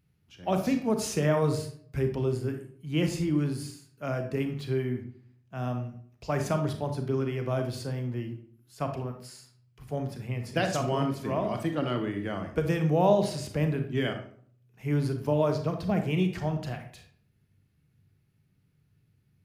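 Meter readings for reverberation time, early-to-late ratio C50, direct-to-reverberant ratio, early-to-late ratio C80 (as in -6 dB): 0.55 s, 8.0 dB, 5.5 dB, 12.0 dB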